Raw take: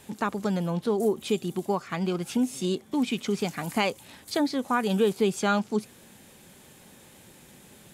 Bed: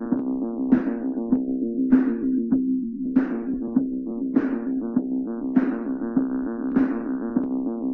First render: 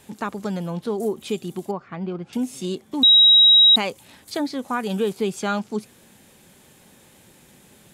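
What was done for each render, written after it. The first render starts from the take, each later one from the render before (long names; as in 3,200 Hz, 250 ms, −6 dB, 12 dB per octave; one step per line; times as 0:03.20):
0:01.71–0:02.33: head-to-tape spacing loss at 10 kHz 33 dB
0:03.03–0:03.76: beep over 3,830 Hz −9 dBFS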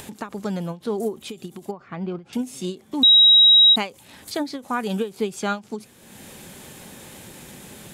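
upward compression, threshold −31 dBFS
every ending faded ahead of time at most 230 dB per second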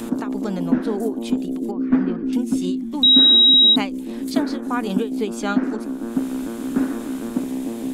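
mix in bed −0.5 dB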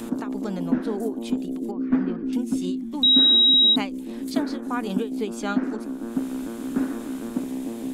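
level −4 dB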